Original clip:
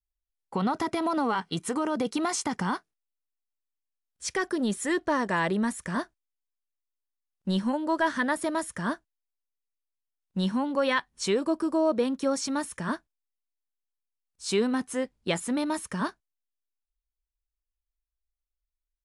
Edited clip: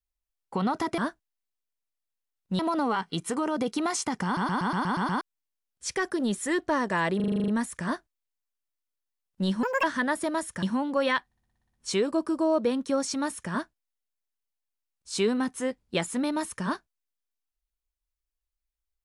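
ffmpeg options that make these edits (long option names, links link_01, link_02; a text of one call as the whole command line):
ffmpeg -i in.wav -filter_complex "[0:a]asplit=30[link_01][link_02][link_03][link_04][link_05][link_06][link_07][link_08][link_09][link_10][link_11][link_12][link_13][link_14][link_15][link_16][link_17][link_18][link_19][link_20][link_21][link_22][link_23][link_24][link_25][link_26][link_27][link_28][link_29][link_30];[link_01]atrim=end=0.982[link_31];[link_02]atrim=start=8.828:end=10.442[link_32];[link_03]atrim=start=0.978:end=2.762[link_33];[link_04]atrim=start=2.638:end=2.762[link_34];[link_05]atrim=start=2.638:end=2.762[link_35];[link_06]atrim=start=2.638:end=2.762[link_36];[link_07]atrim=start=2.638:end=2.762[link_37];[link_08]atrim=start=2.638:end=2.762[link_38];[link_09]atrim=start=2.638:end=2.762[link_39];[link_10]atrim=start=2.638:end=2.762[link_40];[link_11]atrim=start=3.598:end=5.592[link_41];[link_12]atrim=start=5.548:end=5.592[link_42];[link_13]atrim=start=5.548:end=5.592[link_43];[link_14]atrim=start=5.548:end=5.592[link_44];[link_15]atrim=start=5.548:end=5.592[link_45];[link_16]atrim=start=5.548:end=5.592[link_46];[link_17]atrim=start=5.548:end=5.592[link_47];[link_18]atrim=start=5.548:end=5.592[link_48];[link_19]atrim=start=5.548:end=7.704[link_49];[link_20]atrim=start=7.7:end=8.04,asetpts=PTS-STARTPTS,asetrate=73206,aresample=44100[link_50];[link_21]atrim=start=8.036:end=8.832[link_51];[link_22]atrim=start=10.438:end=11.132[link_52];[link_23]atrim=start=11.068:end=11.132[link_53];[link_24]atrim=start=11.068:end=11.132[link_54];[link_25]atrim=start=11.068:end=11.132[link_55];[link_26]atrim=start=11.068:end=11.132[link_56];[link_27]atrim=start=11.068:end=11.132[link_57];[link_28]atrim=start=11.068:end=11.132[link_58];[link_29]atrim=start=11.068:end=11.132[link_59];[link_30]atrim=start=11.068[link_60];[link_31][link_32]acrossfade=duration=0.004:curve1=hsin:curve2=hsin[link_61];[link_61][link_33]acrossfade=duration=0.004:curve1=hsin:curve2=hsin[link_62];[link_62][link_34]acrossfade=duration=0.004:curve1=hsin:curve2=hsin[link_63];[link_63][link_35]acrossfade=duration=0.004:curve1=hsin:curve2=hsin[link_64];[link_64][link_36]acrossfade=duration=0.004:curve1=hsin:curve2=hsin[link_65];[link_65][link_37]acrossfade=duration=0.004:curve1=hsin:curve2=hsin[link_66];[link_66][link_38]acrossfade=duration=0.004:curve1=hsin:curve2=hsin[link_67];[link_67][link_39]acrossfade=duration=0.004:curve1=hsin:curve2=hsin[link_68];[link_68][link_40]acrossfade=duration=0.004:curve1=hsin:curve2=hsin[link_69];[link_69][link_41]acrossfade=duration=0.004:curve1=hsin:curve2=hsin[link_70];[link_70][link_42]acrossfade=duration=0.004:curve1=hsin:curve2=hsin[link_71];[link_71][link_43]acrossfade=duration=0.004:curve1=hsin:curve2=hsin[link_72];[link_72][link_44]acrossfade=duration=0.004:curve1=hsin:curve2=hsin[link_73];[link_73][link_45]acrossfade=duration=0.004:curve1=hsin:curve2=hsin[link_74];[link_74][link_46]acrossfade=duration=0.004:curve1=hsin:curve2=hsin[link_75];[link_75][link_47]acrossfade=duration=0.004:curve1=hsin:curve2=hsin[link_76];[link_76][link_48]acrossfade=duration=0.004:curve1=hsin:curve2=hsin[link_77];[link_77][link_49]acrossfade=duration=0.004:curve1=hsin:curve2=hsin[link_78];[link_78][link_50]acrossfade=duration=0.004:curve1=hsin:curve2=hsin[link_79];[link_79][link_51]acrossfade=duration=0.004:curve1=hsin:curve2=hsin[link_80];[link_80][link_52]acrossfade=duration=0.004:curve1=hsin:curve2=hsin[link_81];[link_81][link_53]acrossfade=duration=0.004:curve1=hsin:curve2=hsin[link_82];[link_82][link_54]acrossfade=duration=0.004:curve1=hsin:curve2=hsin[link_83];[link_83][link_55]acrossfade=duration=0.004:curve1=hsin:curve2=hsin[link_84];[link_84][link_56]acrossfade=duration=0.004:curve1=hsin:curve2=hsin[link_85];[link_85][link_57]acrossfade=duration=0.004:curve1=hsin:curve2=hsin[link_86];[link_86][link_58]acrossfade=duration=0.004:curve1=hsin:curve2=hsin[link_87];[link_87][link_59]acrossfade=duration=0.004:curve1=hsin:curve2=hsin[link_88];[link_88][link_60]acrossfade=duration=0.004:curve1=hsin:curve2=hsin" out.wav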